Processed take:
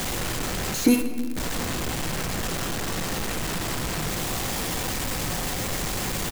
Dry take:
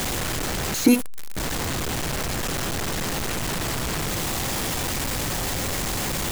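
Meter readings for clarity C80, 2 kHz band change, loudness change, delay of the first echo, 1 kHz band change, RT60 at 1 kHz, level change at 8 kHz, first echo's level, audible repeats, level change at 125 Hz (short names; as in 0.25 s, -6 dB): 10.0 dB, -1.5 dB, -2.0 dB, 0.161 s, -1.5 dB, 1.5 s, -2.0 dB, -19.5 dB, 1, -2.0 dB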